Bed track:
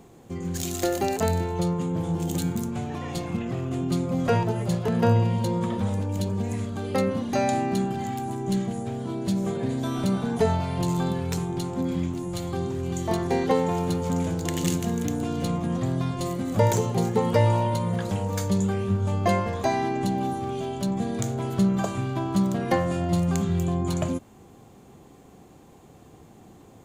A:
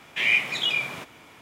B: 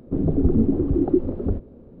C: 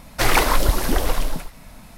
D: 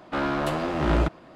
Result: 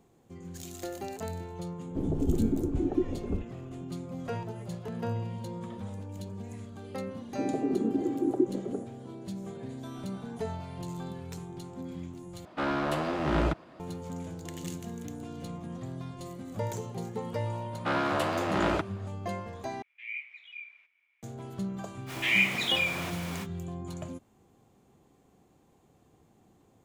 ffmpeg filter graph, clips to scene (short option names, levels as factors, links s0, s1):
-filter_complex "[2:a]asplit=2[s0][s1];[4:a]asplit=2[s2][s3];[1:a]asplit=2[s4][s5];[0:a]volume=0.224[s6];[s1]highpass=f=250:w=0.5412,highpass=f=250:w=1.3066[s7];[s2]highpass=60[s8];[s3]highpass=f=380:p=1[s9];[s4]bandpass=f=2300:t=q:w=8.5:csg=0[s10];[s5]aeval=exprs='val(0)+0.5*0.0224*sgn(val(0))':c=same[s11];[s6]asplit=3[s12][s13][s14];[s12]atrim=end=12.454[s15];[s8]atrim=end=1.35,asetpts=PTS-STARTPTS,volume=0.668[s16];[s13]atrim=start=13.796:end=19.824[s17];[s10]atrim=end=1.41,asetpts=PTS-STARTPTS,volume=0.178[s18];[s14]atrim=start=21.226[s19];[s0]atrim=end=2,asetpts=PTS-STARTPTS,volume=0.376,afade=t=in:d=0.004:c=hsin,afade=t=out:st=1.996:d=0.004:c=hsin,adelay=1840[s20];[s7]atrim=end=2,asetpts=PTS-STARTPTS,volume=0.501,afade=t=in:d=0.004:c=hsin,afade=t=out:st=1.996:d=0.004:c=hsin,adelay=7260[s21];[s9]atrim=end=1.35,asetpts=PTS-STARTPTS,volume=0.944,afade=t=in:d=0.004:c=hsin,afade=t=out:st=1.346:d=0.004:c=hsin,adelay=17730[s22];[s11]atrim=end=1.41,asetpts=PTS-STARTPTS,volume=0.631,afade=t=in:d=0.05,afade=t=out:st=1.36:d=0.05,adelay=22060[s23];[s15][s16]acrossfade=d=0.004:c1=hsin:c2=hsin[s24];[s24][s17]acrossfade=d=0.004:c1=hsin:c2=hsin[s25];[s25][s18]acrossfade=d=0.004:c1=hsin:c2=hsin[s26];[s26][s19]acrossfade=d=0.004:c1=hsin:c2=hsin[s27];[s27][s20][s21][s22][s23]amix=inputs=5:normalize=0"